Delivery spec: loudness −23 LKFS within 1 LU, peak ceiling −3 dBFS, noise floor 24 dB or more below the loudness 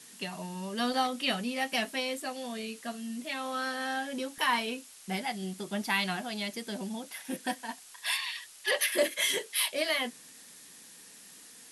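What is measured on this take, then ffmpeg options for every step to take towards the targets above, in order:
background noise floor −53 dBFS; target noise floor −56 dBFS; integrated loudness −32.0 LKFS; sample peak −12.5 dBFS; target loudness −23.0 LKFS
→ -af "afftdn=noise_reduction=6:noise_floor=-53"
-af "volume=9dB"

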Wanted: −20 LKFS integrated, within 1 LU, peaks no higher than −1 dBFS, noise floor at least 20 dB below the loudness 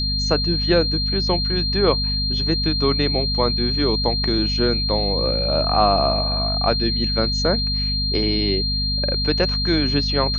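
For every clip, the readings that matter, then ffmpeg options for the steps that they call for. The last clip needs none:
mains hum 50 Hz; hum harmonics up to 250 Hz; level of the hum −22 dBFS; interfering tone 4,200 Hz; level of the tone −22 dBFS; integrated loudness −19.0 LKFS; sample peak −3.0 dBFS; target loudness −20.0 LKFS
→ -af "bandreject=frequency=50:width_type=h:width=4,bandreject=frequency=100:width_type=h:width=4,bandreject=frequency=150:width_type=h:width=4,bandreject=frequency=200:width_type=h:width=4,bandreject=frequency=250:width_type=h:width=4"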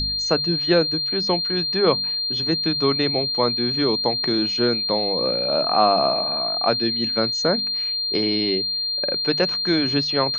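mains hum none found; interfering tone 4,200 Hz; level of the tone −22 dBFS
→ -af "bandreject=frequency=4200:width=30"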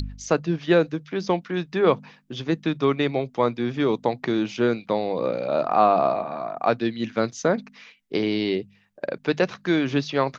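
interfering tone none found; integrated loudness −24.0 LKFS; sample peak −5.5 dBFS; target loudness −20.0 LKFS
→ -af "volume=4dB"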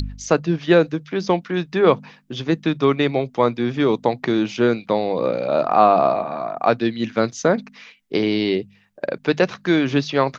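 integrated loudness −20.0 LKFS; sample peak −1.5 dBFS; background noise floor −54 dBFS

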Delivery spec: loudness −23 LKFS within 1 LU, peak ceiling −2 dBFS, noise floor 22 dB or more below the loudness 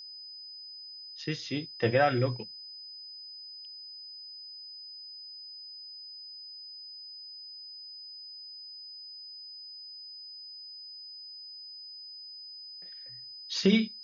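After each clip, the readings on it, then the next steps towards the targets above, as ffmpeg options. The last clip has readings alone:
interfering tone 5,000 Hz; level of the tone −43 dBFS; integrated loudness −36.0 LKFS; sample peak −12.0 dBFS; target loudness −23.0 LKFS
→ -af "bandreject=frequency=5000:width=30"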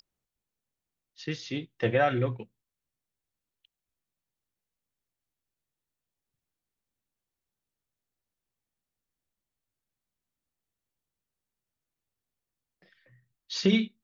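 interfering tone none found; integrated loudness −28.5 LKFS; sample peak −12.5 dBFS; target loudness −23.0 LKFS
→ -af "volume=5.5dB"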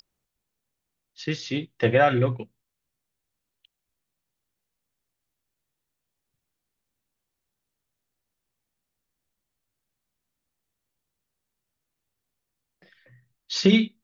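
integrated loudness −23.0 LKFS; sample peak −7.0 dBFS; background noise floor −84 dBFS

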